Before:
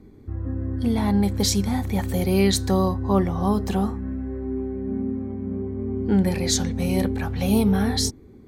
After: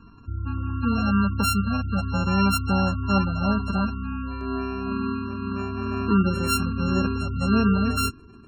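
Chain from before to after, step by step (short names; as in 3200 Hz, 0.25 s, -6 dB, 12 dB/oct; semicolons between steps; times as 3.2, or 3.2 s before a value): sample sorter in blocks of 32 samples; spectral gate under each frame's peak -20 dB strong; bell 380 Hz -10.5 dB 0.4 oct, from 4.41 s 5900 Hz, from 6.21 s 880 Hz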